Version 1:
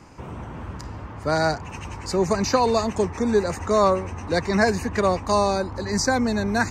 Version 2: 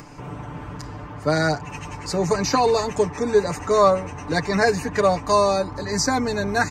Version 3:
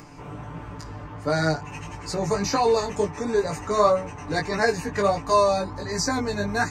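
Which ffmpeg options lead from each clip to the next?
-af "aecho=1:1:6.8:0.71,acompressor=mode=upward:threshold=-37dB:ratio=2.5"
-af "flanger=delay=17.5:depth=2.5:speed=1.5"

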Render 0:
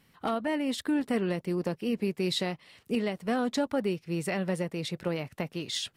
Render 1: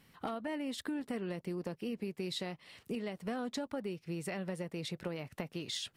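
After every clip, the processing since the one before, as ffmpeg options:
-af "acompressor=threshold=-37dB:ratio=4"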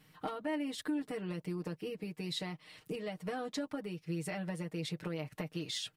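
-af "aecho=1:1:6.5:0.85,volume=-2dB"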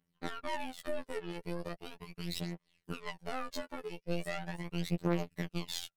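-af "aeval=exprs='0.0562*(cos(1*acos(clip(val(0)/0.0562,-1,1)))-cos(1*PI/2))+0.0126*(cos(2*acos(clip(val(0)/0.0562,-1,1)))-cos(2*PI/2))+0.001*(cos(3*acos(clip(val(0)/0.0562,-1,1)))-cos(3*PI/2))+0.00708*(cos(7*acos(clip(val(0)/0.0562,-1,1)))-cos(7*PI/2))':c=same,aphaser=in_gain=1:out_gain=1:delay=2.4:decay=0.65:speed=0.39:type=triangular,afftfilt=real='hypot(re,im)*cos(PI*b)':imag='0':win_size=2048:overlap=0.75,volume=2.5dB"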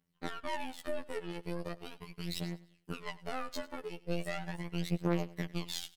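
-af "aecho=1:1:99|198|297:0.1|0.034|0.0116"

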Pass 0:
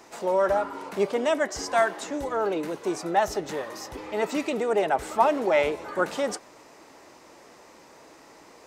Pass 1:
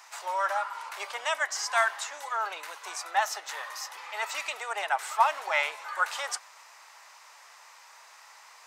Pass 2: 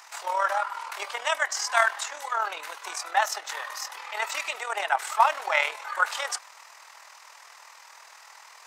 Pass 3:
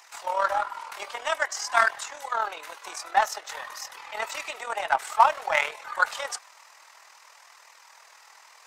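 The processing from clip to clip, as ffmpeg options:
-af "highpass=f=930:w=0.5412,highpass=f=930:w=1.3066,volume=2.5dB"
-af "tremolo=f=40:d=0.571,volume=5.5dB"
-filter_complex "[0:a]asplit=2[a][b];[b]adynamicsmooth=sensitivity=1:basefreq=520,volume=-2.5dB[c];[a][c]amix=inputs=2:normalize=0,flanger=delay=0.3:depth=3.5:regen=-63:speed=0.52:shape=triangular,volume=1.5dB"

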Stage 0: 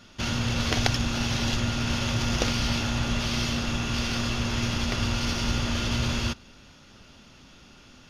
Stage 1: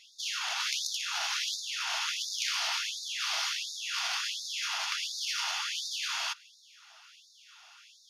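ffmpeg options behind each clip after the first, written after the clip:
-af "afftfilt=real='re*lt(hypot(re,im),0.1)':imag='im*lt(hypot(re,im),0.1)':win_size=1024:overlap=0.75,afftfilt=real='re*gte(b*sr/1024,620*pow(3600/620,0.5+0.5*sin(2*PI*1.4*pts/sr)))':imag='im*gte(b*sr/1024,620*pow(3600/620,0.5+0.5*sin(2*PI*1.4*pts/sr)))':win_size=1024:overlap=0.75"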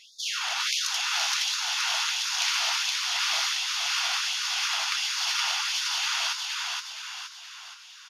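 -filter_complex "[0:a]asplit=7[a][b][c][d][e][f][g];[b]adelay=470,afreqshift=40,volume=-3dB[h];[c]adelay=940,afreqshift=80,volume=-9.4dB[i];[d]adelay=1410,afreqshift=120,volume=-15.8dB[j];[e]adelay=1880,afreqshift=160,volume=-22.1dB[k];[f]adelay=2350,afreqshift=200,volume=-28.5dB[l];[g]adelay=2820,afreqshift=240,volume=-34.9dB[m];[a][h][i][j][k][l][m]amix=inputs=7:normalize=0,volume=4dB"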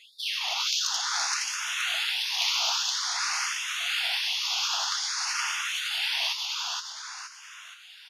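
-filter_complex "[0:a]asplit=2[a][b];[b]volume=20.5dB,asoftclip=hard,volume=-20.5dB,volume=-12dB[c];[a][c]amix=inputs=2:normalize=0,asplit=2[d][e];[e]afreqshift=0.51[f];[d][f]amix=inputs=2:normalize=1"

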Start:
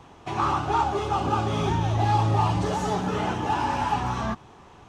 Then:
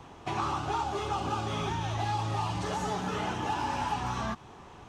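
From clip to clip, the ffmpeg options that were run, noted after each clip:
-filter_complex "[0:a]acrossover=split=930|2900[a][b][c];[a]acompressor=threshold=-33dB:ratio=4[d];[b]acompressor=threshold=-36dB:ratio=4[e];[c]acompressor=threshold=-44dB:ratio=4[f];[d][e][f]amix=inputs=3:normalize=0"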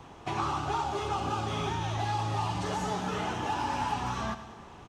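-af "aecho=1:1:102|204|306|408|510|612:0.237|0.128|0.0691|0.0373|0.0202|0.0109"

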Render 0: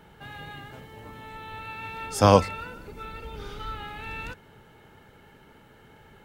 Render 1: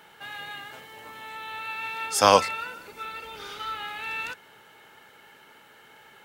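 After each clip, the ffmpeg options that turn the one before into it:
-af "highpass=f=1.3k:p=1,volume=7dB"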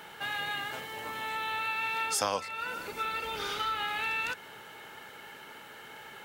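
-af "acompressor=threshold=-34dB:ratio=5,volume=5dB"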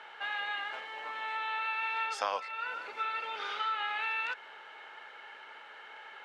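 -af "highpass=640,lowpass=3k"

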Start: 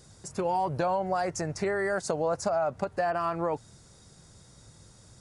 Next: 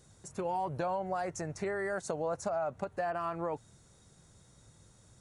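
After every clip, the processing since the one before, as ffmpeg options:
-af "equalizer=f=4.9k:t=o:w=0.2:g=-9.5,volume=-6dB"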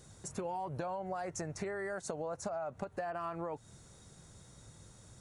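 -af "acompressor=threshold=-40dB:ratio=6,volume=4dB"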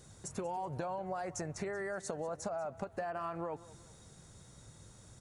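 -af "aecho=1:1:188|376|564:0.119|0.0487|0.02"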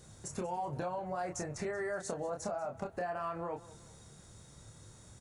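-filter_complex "[0:a]asplit=2[a][b];[b]adelay=28,volume=-5dB[c];[a][c]amix=inputs=2:normalize=0"

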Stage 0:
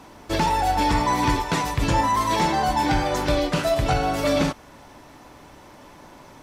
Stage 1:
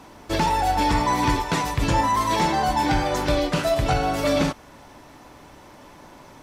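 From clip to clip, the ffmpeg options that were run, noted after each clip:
-af anull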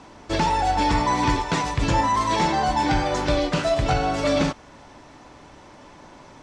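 -af "lowpass=f=8.1k:w=0.5412,lowpass=f=8.1k:w=1.3066"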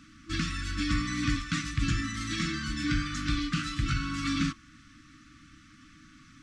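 -af "afftfilt=real='re*(1-between(b*sr/4096,330,1100))':imag='im*(1-between(b*sr/4096,330,1100))':win_size=4096:overlap=0.75,volume=-5dB"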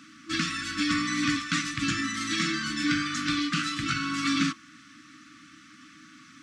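-af "highpass=240,volume=5.5dB"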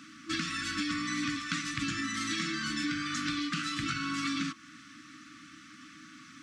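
-af "acompressor=threshold=-30dB:ratio=6"

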